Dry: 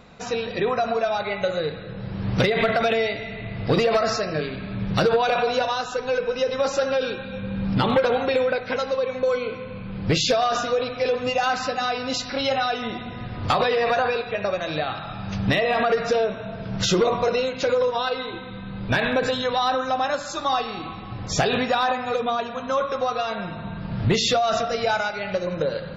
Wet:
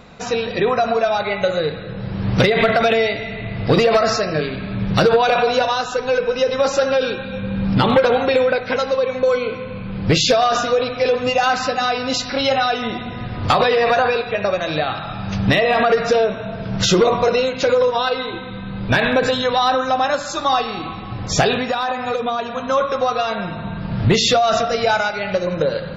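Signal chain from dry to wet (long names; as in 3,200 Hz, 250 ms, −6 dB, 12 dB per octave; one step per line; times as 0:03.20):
0:21.51–0:22.56: downward compressor, threshold −23 dBFS, peak gain reduction 6 dB
level +5.5 dB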